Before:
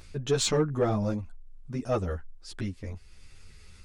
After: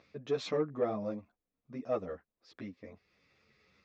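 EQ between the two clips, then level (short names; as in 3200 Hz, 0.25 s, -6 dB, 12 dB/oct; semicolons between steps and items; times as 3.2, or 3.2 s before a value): air absorption 64 m; speaker cabinet 300–5400 Hz, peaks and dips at 370 Hz -7 dB, 880 Hz -8 dB, 1500 Hz -9 dB, 3000 Hz -8 dB, 4400 Hz -4 dB; high shelf 4000 Hz -10.5 dB; -1.5 dB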